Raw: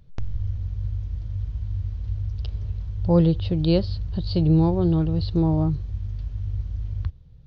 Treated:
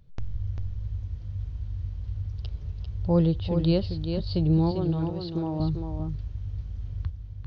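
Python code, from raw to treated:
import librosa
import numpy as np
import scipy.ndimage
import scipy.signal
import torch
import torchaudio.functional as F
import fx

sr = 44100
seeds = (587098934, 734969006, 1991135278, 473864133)

y = fx.highpass(x, sr, hz=320.0, slope=6, at=(4.71, 5.6))
y = y + 10.0 ** (-6.5 / 20.0) * np.pad(y, (int(396 * sr / 1000.0), 0))[:len(y)]
y = F.gain(torch.from_numpy(y), -4.0).numpy()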